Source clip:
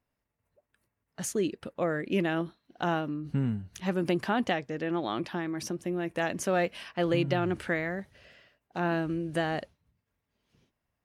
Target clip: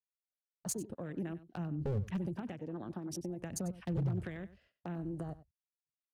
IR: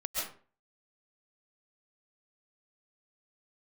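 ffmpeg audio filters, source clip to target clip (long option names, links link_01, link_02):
-filter_complex "[0:a]acrossover=split=160|6300[link_01][link_02][link_03];[link_01]aphaser=in_gain=1:out_gain=1:delay=3.9:decay=0.45:speed=0.29:type=sinusoidal[link_04];[link_02]acompressor=threshold=-41dB:ratio=16[link_05];[link_04][link_05][link_03]amix=inputs=3:normalize=0,agate=range=-46dB:threshold=-58dB:ratio=16:detection=peak,afwtdn=0.00398,aeval=exprs='0.0376*(abs(mod(val(0)/0.0376+3,4)-2)-1)':channel_layout=same,atempo=1.8,acrossover=split=500|3000[link_06][link_07][link_08];[link_07]acompressor=threshold=-50dB:ratio=2.5[link_09];[link_06][link_09][link_08]amix=inputs=3:normalize=0,aecho=1:1:95:0.15,volume=1.5dB"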